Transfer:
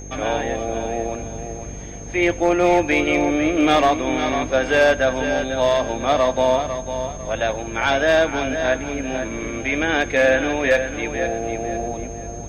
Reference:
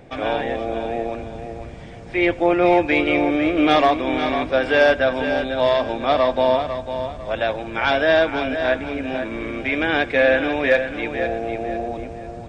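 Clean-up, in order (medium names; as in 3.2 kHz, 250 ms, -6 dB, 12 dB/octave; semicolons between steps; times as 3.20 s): clip repair -9 dBFS; de-hum 49.1 Hz, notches 10; band-stop 6.4 kHz, Q 30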